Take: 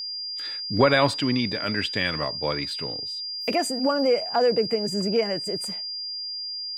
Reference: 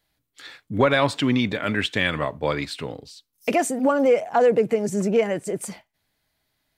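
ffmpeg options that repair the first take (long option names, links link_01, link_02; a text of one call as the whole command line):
ffmpeg -i in.wav -af "bandreject=frequency=4800:width=30,asetnsamples=nb_out_samples=441:pad=0,asendcmd='1.14 volume volume 3.5dB',volume=0dB" out.wav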